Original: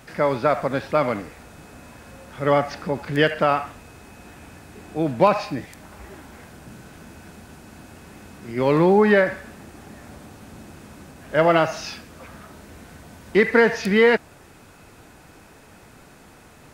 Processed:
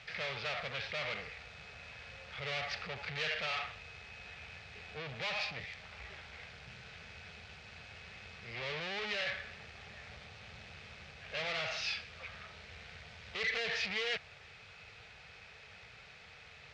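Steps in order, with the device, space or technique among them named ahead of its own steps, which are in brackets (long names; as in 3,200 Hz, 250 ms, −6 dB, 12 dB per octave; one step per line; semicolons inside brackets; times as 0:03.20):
scooped metal amplifier (tube saturation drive 32 dB, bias 0.6; loudspeaker in its box 76–4,400 Hz, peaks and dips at 280 Hz −4 dB, 450 Hz +7 dB, 1,000 Hz −8 dB, 1,500 Hz −4 dB, 2,300 Hz +4 dB; guitar amp tone stack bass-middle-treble 10-0-10)
level +6.5 dB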